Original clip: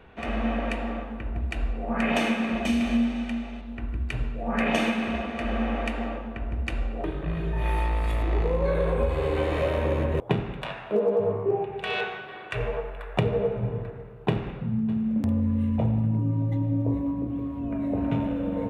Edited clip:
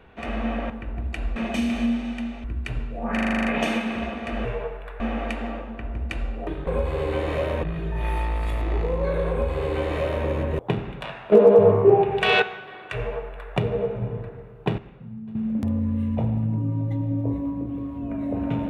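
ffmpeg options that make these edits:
-filter_complex "[0:a]asplit=20[a][b][c][d][e][f][g][h][i][j][k][l][m][n][o][p][q][r][s][t];[a]atrim=end=0.702[u];[b]atrim=start=1.078:end=1.742[v];[c]atrim=start=2.468:end=3.552[w];[d]atrim=start=3.878:end=4.612[x];[e]atrim=start=4.568:end=4.612[y];[f]atrim=start=4.568:end=4.612[z];[g]atrim=start=4.568:end=4.612[aa];[h]atrim=start=4.568:end=4.612[ab];[i]atrim=start=4.568:end=4.612[ac];[j]atrim=start=4.568:end=4.612[ad];[k]atrim=start=4.568:end=4.612[ae];[l]atrim=start=4.568:end=5.572[af];[m]atrim=start=12.578:end=13.132[ag];[n]atrim=start=5.568:end=7.242[ah];[o]atrim=start=8.908:end=9.872[ai];[p]atrim=start=7.238:end=10.932[aj];[q]atrim=start=10.928:end=12.032,asetpts=PTS-STARTPTS,volume=10dB[ak];[r]atrim=start=12.028:end=14.392[al];[s]atrim=start=14.388:end=14.962,asetpts=PTS-STARTPTS,volume=-10.5dB[am];[t]atrim=start=14.958[an];[u][v]acrossfade=d=0.004:c1=hsin:c2=hsin[ao];[ao][w]acrossfade=d=0.004:c1=hsin:c2=hsin[ap];[ap][x]acrossfade=d=0.004:c1=hsin:c2=hsin[aq];[aq][y]acrossfade=d=0.004:c1=hsin:c2=hsin[ar];[ar][z]acrossfade=d=0.004:c1=hsin:c2=hsin[as];[as][aa]acrossfade=d=0.004:c1=hsin:c2=hsin[at];[at][ab]acrossfade=d=0.004:c1=hsin:c2=hsin[au];[au][ac]acrossfade=d=0.004:c1=hsin:c2=hsin[av];[av][ad]acrossfade=d=0.004:c1=hsin:c2=hsin[aw];[aw][ae]acrossfade=d=0.004:c1=hsin:c2=hsin[ax];[ax][af]acrossfade=d=0.004:c1=hsin:c2=hsin[ay];[ay][ag]acrossfade=d=0.004:c1=hsin:c2=hsin[az];[az][ah]acrossfade=d=0.004:c1=hsin:c2=hsin[ba];[ba][ai]acrossfade=d=0.004:c1=hsin:c2=hsin[bb];[bb][aj]acrossfade=d=0.004:c1=hsin:c2=hsin[bc];[bc][ak]acrossfade=d=0.004:c1=hsin:c2=hsin[bd];[bd][al]acrossfade=d=0.004:c1=hsin:c2=hsin[be];[be][am]acrossfade=d=0.004:c1=hsin:c2=hsin[bf];[bf][an]acrossfade=d=0.004:c1=hsin:c2=hsin"

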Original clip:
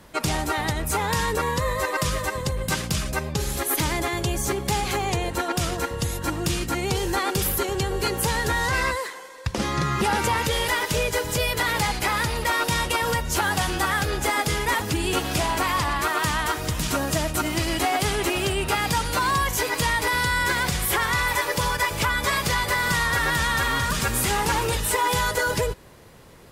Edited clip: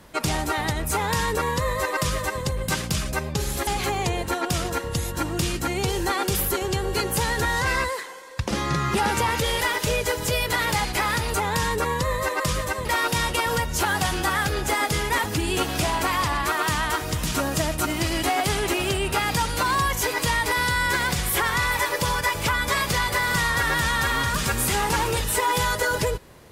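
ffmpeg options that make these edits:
-filter_complex "[0:a]asplit=4[a][b][c][d];[a]atrim=end=3.672[e];[b]atrim=start=4.738:end=12.412[f];[c]atrim=start=0.908:end=2.422[g];[d]atrim=start=12.408[h];[e][f]acrossfade=d=0.004:c1=hsin:c2=hsin[i];[i][g]acrossfade=d=0.004:c1=hsin:c2=hsin[j];[j][h]acrossfade=d=0.004:c1=hsin:c2=hsin"

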